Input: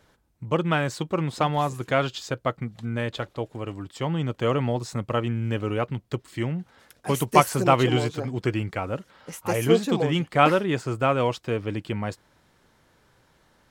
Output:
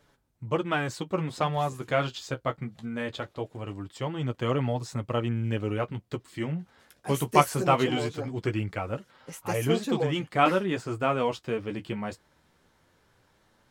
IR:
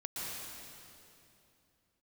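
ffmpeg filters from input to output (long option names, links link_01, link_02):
-af "flanger=delay=6.8:depth=7.8:regen=-29:speed=0.21:shape=triangular"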